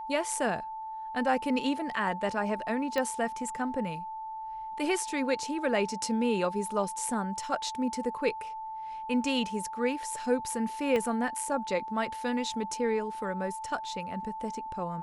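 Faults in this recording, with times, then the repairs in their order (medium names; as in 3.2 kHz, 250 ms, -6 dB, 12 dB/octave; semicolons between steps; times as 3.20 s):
whine 880 Hz -36 dBFS
2.98 s: pop -17 dBFS
10.96 s: pop -18 dBFS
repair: de-click; band-stop 880 Hz, Q 30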